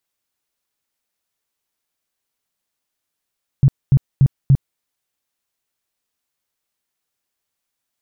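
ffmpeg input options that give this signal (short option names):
-f lavfi -i "aevalsrc='0.447*sin(2*PI*136*mod(t,0.29))*lt(mod(t,0.29),7/136)':d=1.16:s=44100"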